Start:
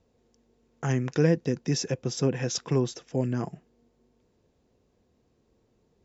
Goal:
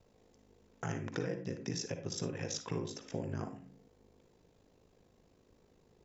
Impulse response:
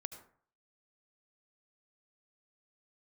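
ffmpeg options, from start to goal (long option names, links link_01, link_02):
-filter_complex "[0:a]equalizer=frequency=210:width_type=o:width=2.1:gain=-3.5,bandreject=frequency=81.7:width_type=h:width=4,bandreject=frequency=163.4:width_type=h:width=4,bandreject=frequency=245.1:width_type=h:width=4,bandreject=frequency=326.8:width_type=h:width=4,acompressor=threshold=-41dB:ratio=4,aeval=exprs='val(0)*sin(2*PI*26*n/s)':channel_layout=same[link_01];[1:a]atrim=start_sample=2205,asetrate=70560,aresample=44100[link_02];[link_01][link_02]afir=irnorm=-1:irlink=0,volume=13.5dB"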